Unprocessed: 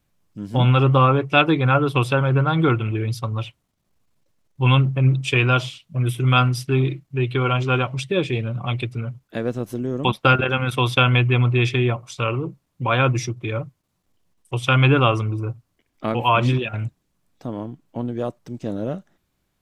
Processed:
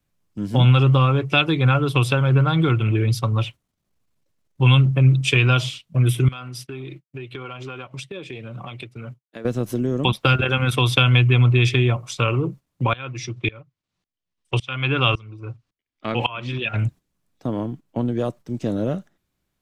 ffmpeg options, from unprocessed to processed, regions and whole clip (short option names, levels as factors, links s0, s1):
-filter_complex "[0:a]asettb=1/sr,asplit=3[s0][s1][s2];[s0]atrim=end=6.284[s3];[s1]atrim=start=6.28:end=9.45,asetpts=PTS-STARTPTS,afade=t=in:d=0.004:c=qsin,afade=t=out:st=3.166:d=0.004:c=qsin,highpass=f=250:p=1,agate=range=0.0224:threshold=0.0112:ratio=3:release=100:detection=peak,acompressor=threshold=0.02:ratio=16:attack=3.2:release=140:knee=1:detection=peak[s4];[s2]atrim=start=9.446[s5];[s3][s4]acrossfade=d=0.004:c1=hsin:c2=qsin[s6];[s6][s5]acrossfade=d=0.004:c1=qsin:c2=hsin,asettb=1/sr,asplit=3[s7][s8][s9];[s7]atrim=end=12.934[s10];[s8]atrim=start=12.93:end=16.76,asetpts=PTS-STARTPTS,afade=t=in:d=0.004:c=qsin,afade=t=out:st=3.826:d=0.004:c=qsin,lowpass=4100,highshelf=f=2000:g=12,aeval=exprs='val(0)*pow(10,-26*if(lt(mod(-1.8*n/s,1),2*abs(-1.8)/1000),1-mod(-1.8*n/s,1)/(2*abs(-1.8)/1000),(mod(-1.8*n/s,1)-2*abs(-1.8)/1000)/(1-2*abs(-1.8)/1000))/20)':c=same[s11];[s9]atrim=start=16.756[s12];[s10][s11]acrossfade=d=0.004:c1=hsin:c2=qsin[s13];[s13][s12]acrossfade=d=0.004:c1=qsin:c2=hsin,agate=range=0.355:threshold=0.01:ratio=16:detection=peak,equalizer=f=830:w=1.5:g=-2,acrossover=split=130|3000[s14][s15][s16];[s15]acompressor=threshold=0.0631:ratio=6[s17];[s14][s17][s16]amix=inputs=3:normalize=0,volume=1.78"